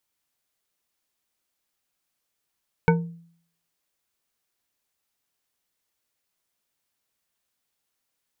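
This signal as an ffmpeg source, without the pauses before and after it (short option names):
-f lavfi -i "aevalsrc='0.2*pow(10,-3*t/0.59)*sin(2*PI*168*t)+0.158*pow(10,-3*t/0.29)*sin(2*PI*463.2*t)+0.126*pow(10,-3*t/0.181)*sin(2*PI*907.9*t)+0.1*pow(10,-3*t/0.127)*sin(2*PI*1500.7*t)+0.0794*pow(10,-3*t/0.096)*sin(2*PI*2241.1*t)':d=0.89:s=44100"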